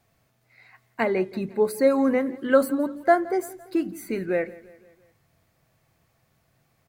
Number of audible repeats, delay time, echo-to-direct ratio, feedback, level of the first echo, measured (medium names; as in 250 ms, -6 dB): 3, 170 ms, -19.0 dB, 53%, -20.5 dB